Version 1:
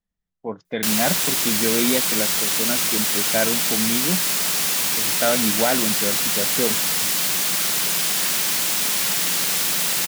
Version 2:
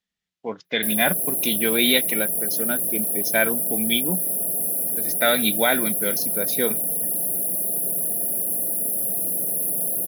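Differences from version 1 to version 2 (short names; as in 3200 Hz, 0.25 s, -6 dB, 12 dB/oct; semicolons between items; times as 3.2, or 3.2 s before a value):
background: add brick-wall FIR band-stop 740–10000 Hz; master: add weighting filter D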